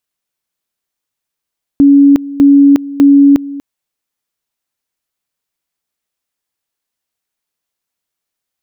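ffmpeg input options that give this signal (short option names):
-f lavfi -i "aevalsrc='pow(10,(-2-18*gte(mod(t,0.6),0.36))/20)*sin(2*PI*281*t)':d=1.8:s=44100"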